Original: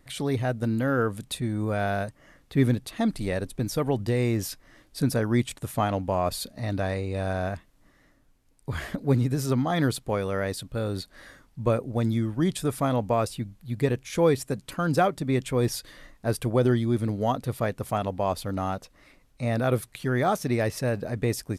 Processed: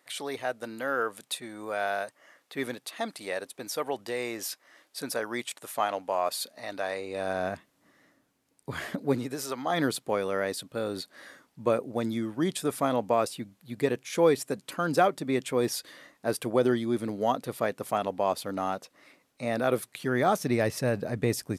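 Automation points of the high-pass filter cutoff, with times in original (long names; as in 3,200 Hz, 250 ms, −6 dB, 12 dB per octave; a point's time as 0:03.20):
0:06.84 550 Hz
0:07.54 190 Hz
0:08.98 190 Hz
0:09.56 650 Hz
0:09.78 250 Hz
0:19.77 250 Hz
0:20.71 120 Hz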